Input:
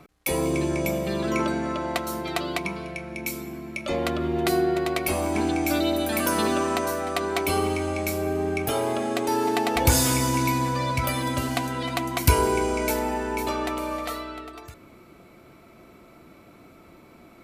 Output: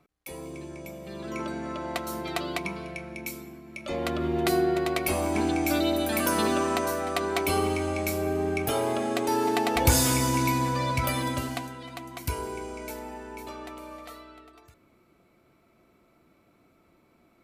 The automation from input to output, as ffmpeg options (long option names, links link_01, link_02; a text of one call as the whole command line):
ffmpeg -i in.wav -af "volume=5.5dB,afade=type=in:start_time=0.97:duration=1.24:silence=0.251189,afade=type=out:start_time=3.01:duration=0.63:silence=0.446684,afade=type=in:start_time=3.64:duration=0.61:silence=0.375837,afade=type=out:start_time=11.2:duration=0.58:silence=0.281838" out.wav